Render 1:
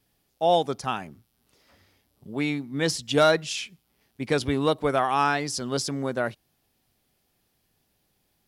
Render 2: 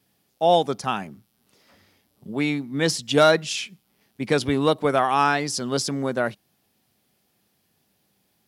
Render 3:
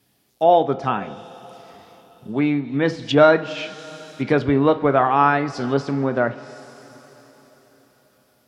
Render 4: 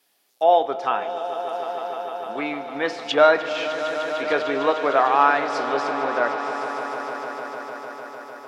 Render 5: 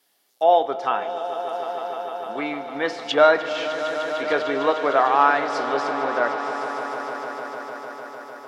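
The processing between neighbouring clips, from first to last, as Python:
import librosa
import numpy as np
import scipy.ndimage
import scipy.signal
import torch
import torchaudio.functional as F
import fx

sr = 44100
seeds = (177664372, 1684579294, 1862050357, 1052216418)

y1 = scipy.signal.sosfilt(scipy.signal.butter(2, 100.0, 'highpass', fs=sr, output='sos'), x)
y1 = fx.peak_eq(y1, sr, hz=200.0, db=6.0, octaves=0.21)
y1 = y1 * librosa.db_to_amplitude(3.0)
y2 = fx.rev_double_slope(y1, sr, seeds[0], early_s=0.33, late_s=4.6, knee_db=-18, drr_db=9.0)
y2 = fx.env_lowpass_down(y2, sr, base_hz=1900.0, full_db=-20.5)
y2 = y2 * librosa.db_to_amplitude(3.5)
y3 = scipy.signal.sosfilt(scipy.signal.butter(2, 550.0, 'highpass', fs=sr, output='sos'), y2)
y3 = fx.echo_swell(y3, sr, ms=151, loudest=5, wet_db=-14.0)
y4 = fx.notch(y3, sr, hz=2500.0, q=16.0)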